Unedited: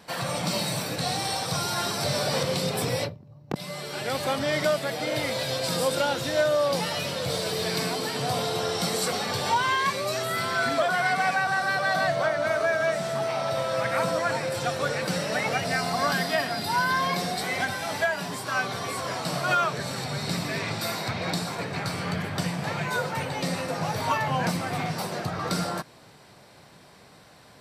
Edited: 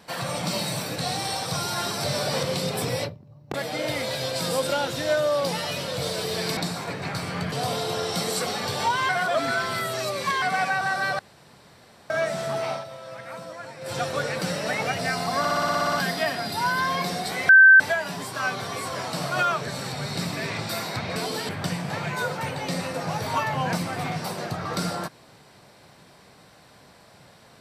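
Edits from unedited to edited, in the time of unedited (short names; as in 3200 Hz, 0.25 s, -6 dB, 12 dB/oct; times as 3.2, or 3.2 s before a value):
3.54–4.82 cut
7.85–8.18 swap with 21.28–22.23
9.75–11.08 reverse
11.85–12.76 room tone
13.37–14.6 dip -12.5 dB, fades 0.14 s
16.05 stutter 0.06 s, 10 plays
17.61–17.92 bleep 1550 Hz -8 dBFS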